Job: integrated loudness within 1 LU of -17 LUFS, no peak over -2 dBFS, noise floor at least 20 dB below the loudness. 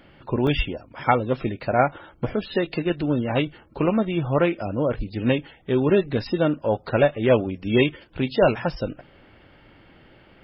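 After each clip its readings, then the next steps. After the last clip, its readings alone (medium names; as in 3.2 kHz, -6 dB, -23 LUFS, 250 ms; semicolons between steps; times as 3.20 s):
dropouts 1; longest dropout 1.1 ms; loudness -23.5 LUFS; peak level -3.5 dBFS; loudness target -17.0 LUFS
-> interpolate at 0.47 s, 1.1 ms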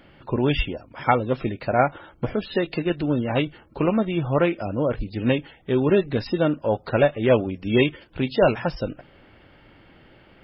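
dropouts 0; loudness -23.5 LUFS; peak level -3.5 dBFS; loudness target -17.0 LUFS
-> trim +6.5 dB; peak limiter -2 dBFS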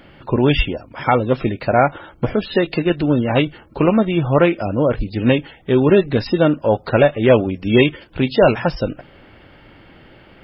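loudness -17.5 LUFS; peak level -2.0 dBFS; noise floor -47 dBFS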